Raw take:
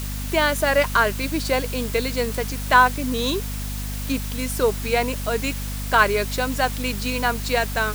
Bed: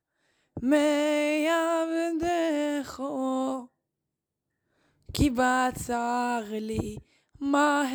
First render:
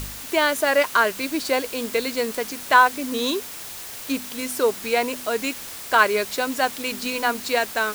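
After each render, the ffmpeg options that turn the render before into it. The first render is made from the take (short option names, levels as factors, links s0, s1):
-af "bandreject=f=50:t=h:w=4,bandreject=f=100:t=h:w=4,bandreject=f=150:t=h:w=4,bandreject=f=200:t=h:w=4,bandreject=f=250:t=h:w=4"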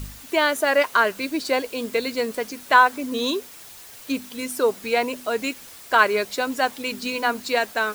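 -af "afftdn=nr=8:nf=-36"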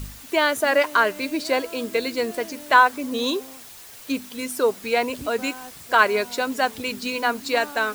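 -filter_complex "[1:a]volume=0.178[s0];[0:a][s0]amix=inputs=2:normalize=0"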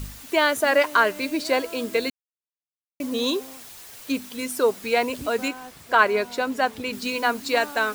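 -filter_complex "[0:a]asettb=1/sr,asplit=3[s0][s1][s2];[s0]atrim=end=5.484[s3];[s1]atrim=start=5.48:end=6.93,asetpts=PTS-STARTPTS,afade=t=in:d=0.004:c=qsin,afade=t=out:st=1.446:d=0.004:c=qsin,highshelf=f=3800:g=-7.5[s4];[s2]atrim=start=6.926[s5];[s3][s4]acrossfade=d=0.004:c1=hsin:c2=qsin[s6];[s6][s5]acrossfade=d=0.004:c1=qsin:c2=hsin,asplit=3[s7][s8][s9];[s7]atrim=end=2.1,asetpts=PTS-STARTPTS,afade=t=out:st=2.096:d=0.004:c=hsin[s10];[s8]atrim=start=2.1:end=3,asetpts=PTS-STARTPTS,volume=0[s11];[s9]atrim=start=3,asetpts=PTS-STARTPTS,afade=t=in:d=0.004:c=hsin[s12];[s10][s11][s12]concat=n=3:v=0:a=1"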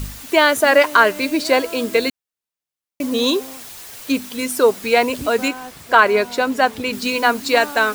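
-af "volume=2.11,alimiter=limit=0.794:level=0:latency=1"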